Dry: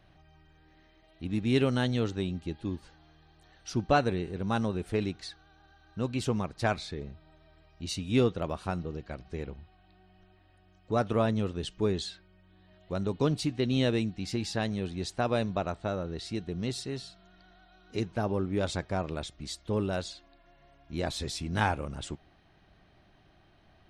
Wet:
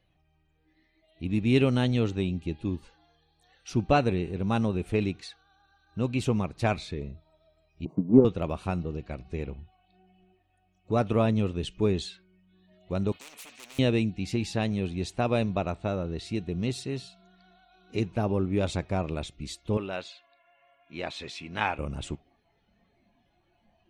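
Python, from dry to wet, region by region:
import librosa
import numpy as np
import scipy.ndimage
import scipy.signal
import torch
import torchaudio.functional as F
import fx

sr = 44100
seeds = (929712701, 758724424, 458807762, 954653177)

y = fx.chain(x, sr, fx.block_float(bits=5),
    fx.ellip_bandpass(low_hz=150.0, high_hz=1000.0, order=3, stop_db=50),
    fx.transient(attack_db=10, sustain_db=4), at=(7.85, 8.25))
y = fx.chain(y, sr, fx.overload_stage(gain_db=28.5),
    fx.spectral_comp(ratio=10.0), at=(13.12, 13.79))
y = fx.chain(y, sr, fx.lowpass(hz=2200.0, slope=12),
    fx.tilt_eq(slope=4.5), at=(19.77, 21.79))
y = fx.graphic_eq_31(y, sr, hz=(1600, 2500, 5000), db=(-4, 7, -4))
y = fx.noise_reduce_blind(y, sr, reduce_db=14)
y = fx.low_shelf(y, sr, hz=480.0, db=4.5)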